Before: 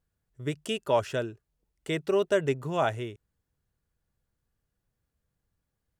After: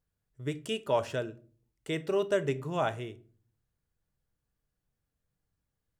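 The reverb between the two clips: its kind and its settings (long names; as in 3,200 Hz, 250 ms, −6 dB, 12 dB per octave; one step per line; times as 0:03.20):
rectangular room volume 330 cubic metres, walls furnished, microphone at 0.47 metres
level −3.5 dB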